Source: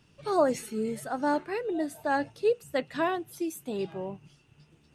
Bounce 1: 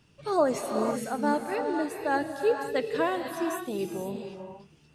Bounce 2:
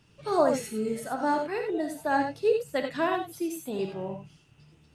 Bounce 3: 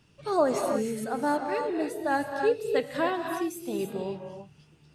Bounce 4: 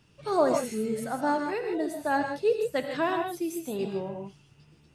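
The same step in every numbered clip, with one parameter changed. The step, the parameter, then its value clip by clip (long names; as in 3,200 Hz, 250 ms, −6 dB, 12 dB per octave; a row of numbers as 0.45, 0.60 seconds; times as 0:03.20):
reverb whose tail is shaped and stops, gate: 530, 110, 340, 180 milliseconds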